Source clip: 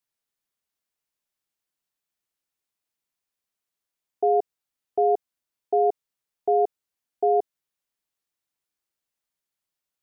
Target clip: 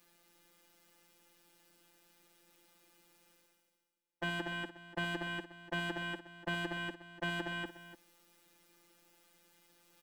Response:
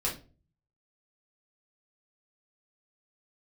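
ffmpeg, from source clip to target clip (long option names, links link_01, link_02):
-filter_complex "[0:a]acrossover=split=280[link_01][link_02];[link_02]aeval=exprs='0.0668*(abs(mod(val(0)/0.0668+3,4)-2)-1)':channel_layout=same[link_03];[link_01][link_03]amix=inputs=2:normalize=0,equalizer=frequency=180:width_type=o:width=2.1:gain=12.5,aecho=1:1:64.14|239.1:0.316|0.562,afftfilt=real='hypot(re,im)*cos(PI*b)':imag='0':win_size=1024:overlap=0.75,bass=frequency=250:gain=-2,treble=frequency=4000:gain=-5,areverse,acompressor=mode=upward:threshold=-39dB:ratio=2.5,areverse,aecho=1:1:3.4:0.61,aecho=1:1:294:0.2,volume=-3.5dB"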